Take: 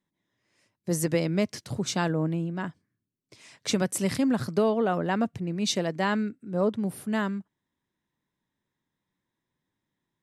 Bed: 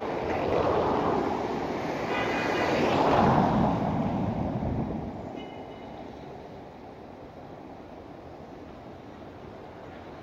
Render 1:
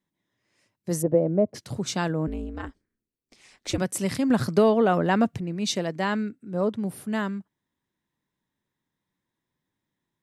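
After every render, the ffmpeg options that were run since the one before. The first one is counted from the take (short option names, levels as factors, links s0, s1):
-filter_complex "[0:a]asplit=3[s0][s1][s2];[s0]afade=t=out:st=1.01:d=0.02[s3];[s1]lowpass=f=610:t=q:w=2.5,afade=t=in:st=1.01:d=0.02,afade=t=out:st=1.54:d=0.02[s4];[s2]afade=t=in:st=1.54:d=0.02[s5];[s3][s4][s5]amix=inputs=3:normalize=0,asettb=1/sr,asplit=3[s6][s7][s8];[s6]atrim=end=2.274[s9];[s7]atrim=start=2.27:end=3.78,asetpts=PTS-STARTPTS,afade=t=in:d=0.004:c=qsin,afade=t=out:st=1.506:d=0.004:c=qsin,aeval=exprs='val(0)*sin(2*PI*110*n/s)':c=same[s10];[s8]atrim=start=3.776[s11];[s9][s10]acrossfade=d=0.004:c1=hsin:c2=qsin[s12];[s12][s11]acrossfade=d=0.004:c1=qsin:c2=hsin,asettb=1/sr,asplit=3[s13][s14][s15];[s13]atrim=end=4.304[s16];[s14]atrim=start=4.3:end=5.41,asetpts=PTS-STARTPTS,afade=t=in:d=0.004:c=qsin,afade=t=out:st=1.106:d=0.004:c=qsin,acontrast=22[s17];[s15]atrim=start=5.406[s18];[s16][s17]acrossfade=d=0.004:c1=hsin:c2=qsin[s19];[s19][s18]acrossfade=d=0.004:c1=qsin:c2=hsin"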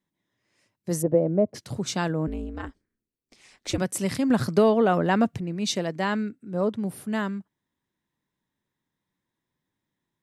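-af anull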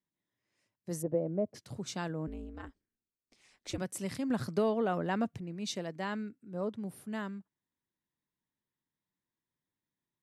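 -af "volume=0.299"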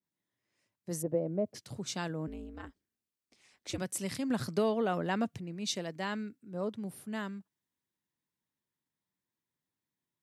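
-af "highpass=57,adynamicequalizer=threshold=0.00355:dfrequency=2100:dqfactor=0.7:tfrequency=2100:tqfactor=0.7:attack=5:release=100:ratio=0.375:range=2.5:mode=boostabove:tftype=highshelf"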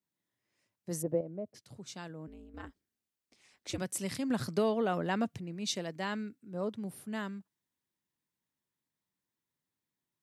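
-filter_complex "[0:a]asplit=3[s0][s1][s2];[s0]atrim=end=1.212[s3];[s1]atrim=start=1.208:end=2.542,asetpts=PTS-STARTPTS,volume=0.398[s4];[s2]atrim=start=2.538[s5];[s3][s4]acrossfade=d=0.004:c1=hsin:c2=hsin[s6];[s6][s5]acrossfade=d=0.004:c1=hsin:c2=hsin"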